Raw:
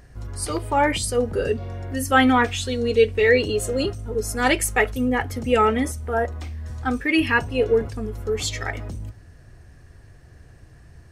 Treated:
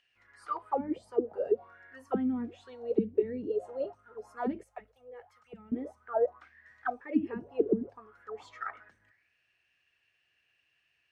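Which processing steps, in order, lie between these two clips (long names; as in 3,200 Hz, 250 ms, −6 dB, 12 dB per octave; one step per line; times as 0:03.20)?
envelope filter 200–3,000 Hz, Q 9.3, down, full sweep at −14 dBFS
0:04.63–0:05.72: guitar amp tone stack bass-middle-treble 10-0-10
level +2 dB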